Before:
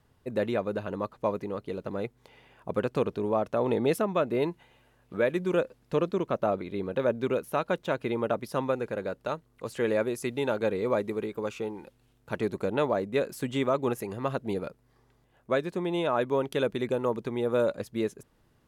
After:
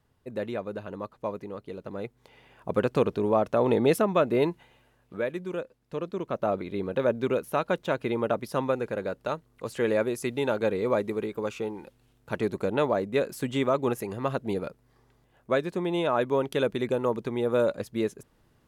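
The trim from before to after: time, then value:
1.80 s -4 dB
2.81 s +3.5 dB
4.43 s +3.5 dB
5.79 s -9 dB
6.59 s +1.5 dB

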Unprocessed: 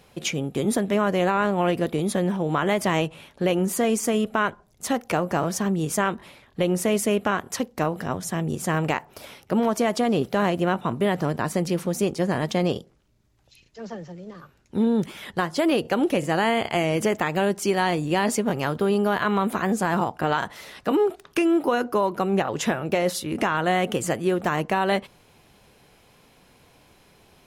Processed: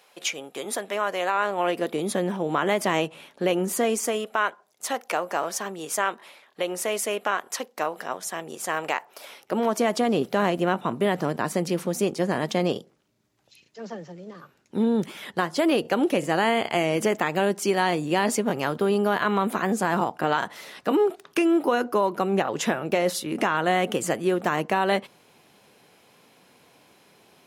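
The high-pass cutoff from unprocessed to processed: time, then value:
1.30 s 620 Hz
2.13 s 230 Hz
3.79 s 230 Hz
4.34 s 530 Hz
9.24 s 530 Hz
9.84 s 180 Hz

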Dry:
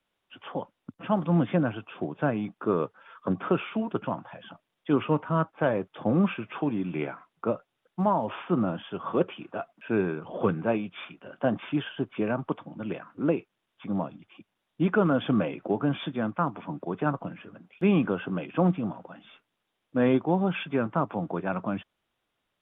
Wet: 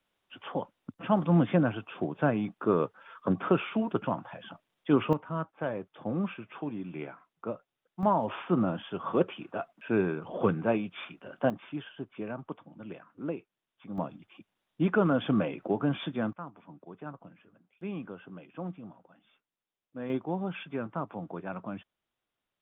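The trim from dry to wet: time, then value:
0 dB
from 5.13 s -8 dB
from 8.03 s -1 dB
from 11.50 s -9.5 dB
from 13.98 s -2 dB
from 16.33 s -15 dB
from 20.10 s -8 dB

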